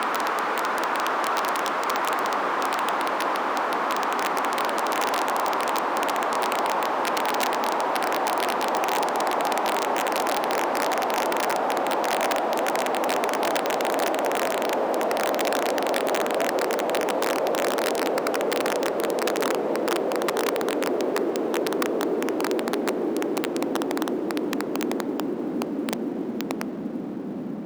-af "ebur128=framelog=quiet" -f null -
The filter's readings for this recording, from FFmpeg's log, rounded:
Integrated loudness:
  I:         -24.8 LUFS
  Threshold: -34.7 LUFS
Loudness range:
  LRA:         2.5 LU
  Threshold: -44.6 LUFS
  LRA low:   -26.5 LUFS
  LRA high:  -24.0 LUFS